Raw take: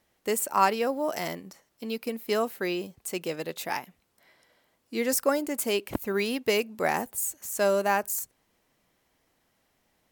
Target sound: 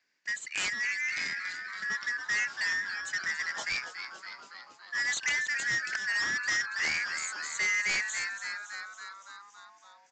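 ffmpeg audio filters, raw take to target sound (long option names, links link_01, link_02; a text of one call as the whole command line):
ffmpeg -i in.wav -filter_complex "[0:a]afftfilt=real='real(if(lt(b,272),68*(eq(floor(b/68),0)*2+eq(floor(b/68),1)*0+eq(floor(b/68),2)*3+eq(floor(b/68),3)*1)+mod(b,68),b),0)':imag='imag(if(lt(b,272),68*(eq(floor(b/68),0)*2+eq(floor(b/68),1)*0+eq(floor(b/68),2)*3+eq(floor(b/68),3)*1)+mod(b,68),b),0)':win_size=2048:overlap=0.75,asplit=9[link_01][link_02][link_03][link_04][link_05][link_06][link_07][link_08][link_09];[link_02]adelay=281,afreqshift=-140,volume=-12dB[link_10];[link_03]adelay=562,afreqshift=-280,volume=-15.9dB[link_11];[link_04]adelay=843,afreqshift=-420,volume=-19.8dB[link_12];[link_05]adelay=1124,afreqshift=-560,volume=-23.6dB[link_13];[link_06]adelay=1405,afreqshift=-700,volume=-27.5dB[link_14];[link_07]adelay=1686,afreqshift=-840,volume=-31.4dB[link_15];[link_08]adelay=1967,afreqshift=-980,volume=-35.3dB[link_16];[link_09]adelay=2248,afreqshift=-1120,volume=-39.1dB[link_17];[link_01][link_10][link_11][link_12][link_13][link_14][link_15][link_16][link_17]amix=inputs=9:normalize=0,acrossover=split=990[link_18][link_19];[link_19]aeval=exprs='(mod(5.01*val(0)+1,2)-1)/5.01':channel_layout=same[link_20];[link_18][link_20]amix=inputs=2:normalize=0,dynaudnorm=framelen=180:gausssize=13:maxgain=6.5dB,highpass=180,aresample=16000,asoftclip=type=tanh:threshold=-21.5dB,aresample=44100,volume=-4.5dB" out.wav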